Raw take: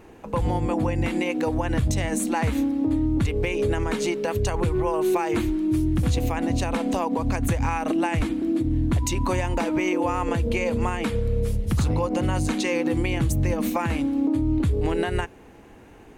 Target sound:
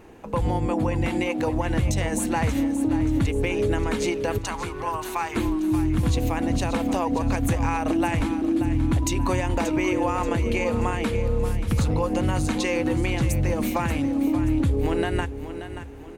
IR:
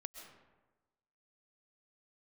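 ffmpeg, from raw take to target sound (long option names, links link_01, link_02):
-filter_complex "[0:a]asettb=1/sr,asplit=3[link_01][link_02][link_03];[link_01]atrim=end=4.384[link_04];[link_02]atrim=start=4.38:end=5.36,asetpts=PTS-STARTPTS,afade=type=in:duration=0.004:curve=qsin,afade=type=out:start_time=0.976:duration=0.004:curve=qsin,lowshelf=frequency=680:width_type=q:width=1.5:gain=-12[link_05];[link_03]atrim=start=5.356[link_06];[link_04][link_05]acrossfade=duration=0.004:curve1=hsin:curve2=qsin[link_07];[link_07][link_06]acrossfade=duration=0.004:curve1=qsin:curve2=hsin,aecho=1:1:581|1162|1743|2324:0.282|0.116|0.0474|0.0194"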